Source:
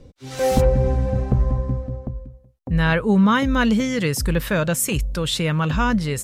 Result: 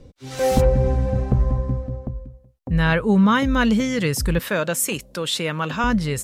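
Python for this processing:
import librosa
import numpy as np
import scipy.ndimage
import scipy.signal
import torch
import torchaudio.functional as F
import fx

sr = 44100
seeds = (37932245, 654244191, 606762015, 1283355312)

y = fx.highpass(x, sr, hz=240.0, slope=12, at=(4.39, 5.84))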